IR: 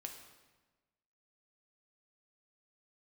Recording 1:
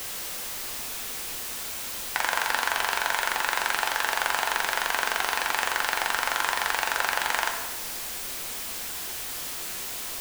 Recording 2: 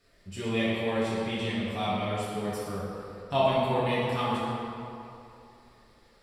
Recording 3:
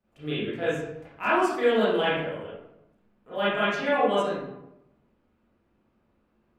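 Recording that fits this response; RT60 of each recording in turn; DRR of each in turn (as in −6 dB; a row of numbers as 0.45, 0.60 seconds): 1; 1.3, 2.8, 0.90 seconds; 3.0, −9.5, −11.5 decibels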